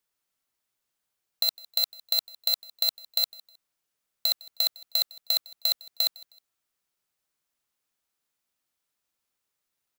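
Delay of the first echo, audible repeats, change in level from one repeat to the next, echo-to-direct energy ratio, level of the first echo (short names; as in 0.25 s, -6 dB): 0.157 s, 2, -10.5 dB, -22.0 dB, -22.5 dB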